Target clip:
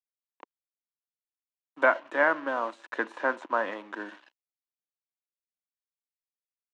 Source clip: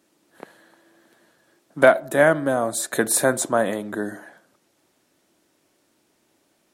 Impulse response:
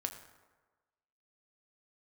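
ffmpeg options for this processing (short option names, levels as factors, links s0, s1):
-filter_complex "[0:a]adynamicequalizer=threshold=0.0224:dfrequency=1900:dqfactor=0.75:tfrequency=1900:tqfactor=0.75:attack=5:release=100:ratio=0.375:range=3:mode=boostabove:tftype=bell,acrossover=split=2100[s0][s1];[s1]acompressor=threshold=0.00891:ratio=16[s2];[s0][s2]amix=inputs=2:normalize=0,aeval=exprs='sgn(val(0))*max(abs(val(0))-0.01,0)':c=same,highpass=f=290:w=0.5412,highpass=f=290:w=1.3066,equalizer=f=410:t=q:w=4:g=-7,equalizer=f=680:t=q:w=4:g=-7,equalizer=f=980:t=q:w=4:g=9,equalizer=f=2800:t=q:w=4:g=6,equalizer=f=5000:t=q:w=4:g=-4,lowpass=f=6000:w=0.5412,lowpass=f=6000:w=1.3066,volume=0.447"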